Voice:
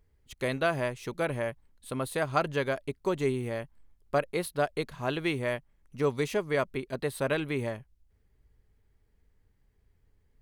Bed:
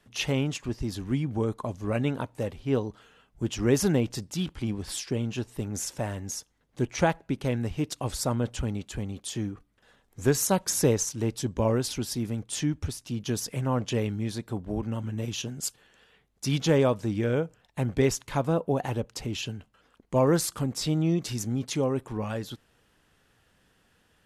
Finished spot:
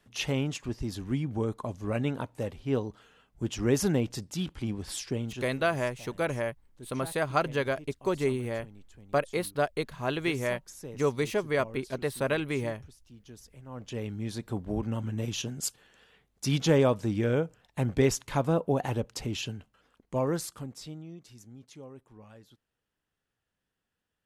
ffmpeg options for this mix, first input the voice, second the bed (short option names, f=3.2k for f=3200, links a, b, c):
-filter_complex "[0:a]adelay=5000,volume=0.5dB[a];[1:a]volume=17dB,afade=t=out:st=5.13:d=0.49:silence=0.133352,afade=t=in:st=13.66:d=0.92:silence=0.105925,afade=t=out:st=19.24:d=1.82:silence=0.105925[b];[a][b]amix=inputs=2:normalize=0"